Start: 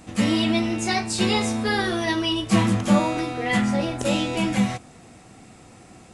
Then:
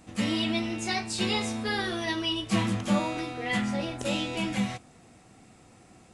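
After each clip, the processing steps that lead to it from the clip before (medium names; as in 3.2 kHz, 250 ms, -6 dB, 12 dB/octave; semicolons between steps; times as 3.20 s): dynamic bell 3.2 kHz, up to +4 dB, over -39 dBFS, Q 0.87; trim -7.5 dB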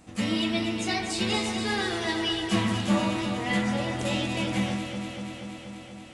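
echo whose repeats swap between lows and highs 120 ms, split 2.3 kHz, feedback 87%, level -6 dB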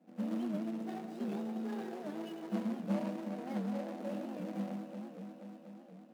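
median filter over 41 samples; rippled Chebyshev high-pass 160 Hz, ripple 6 dB; warped record 78 rpm, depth 160 cents; trim -5.5 dB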